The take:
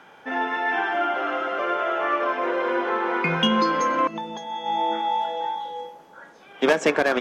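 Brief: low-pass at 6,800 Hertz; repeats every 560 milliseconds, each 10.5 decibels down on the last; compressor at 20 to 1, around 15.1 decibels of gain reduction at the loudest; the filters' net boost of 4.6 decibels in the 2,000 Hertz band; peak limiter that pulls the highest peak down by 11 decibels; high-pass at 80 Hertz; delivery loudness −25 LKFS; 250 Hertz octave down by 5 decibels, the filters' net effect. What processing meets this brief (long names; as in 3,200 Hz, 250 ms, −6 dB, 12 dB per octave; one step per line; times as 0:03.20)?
high-pass filter 80 Hz
low-pass filter 6,800 Hz
parametric band 250 Hz −7 dB
parametric band 2,000 Hz +6 dB
downward compressor 20 to 1, threshold −29 dBFS
brickwall limiter −28.5 dBFS
repeating echo 560 ms, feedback 30%, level −10.5 dB
level +11 dB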